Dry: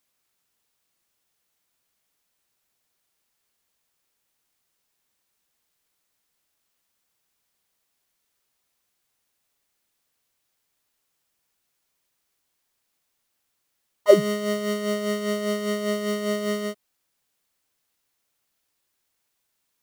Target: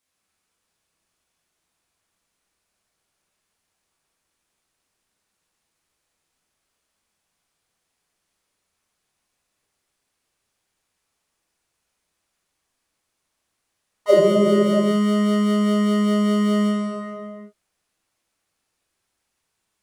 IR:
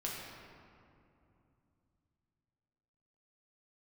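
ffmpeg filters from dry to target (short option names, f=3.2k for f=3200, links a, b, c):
-filter_complex "[1:a]atrim=start_sample=2205,afade=t=out:st=0.44:d=0.01,atrim=end_sample=19845,asetrate=22050,aresample=44100[a];[0:a][a]afir=irnorm=-1:irlink=0,volume=-3dB"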